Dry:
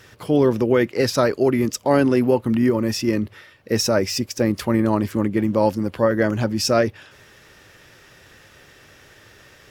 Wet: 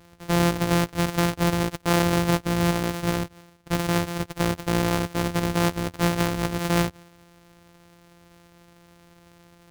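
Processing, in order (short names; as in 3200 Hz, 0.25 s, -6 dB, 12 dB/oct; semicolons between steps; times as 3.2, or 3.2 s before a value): sample sorter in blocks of 256 samples; gain -4.5 dB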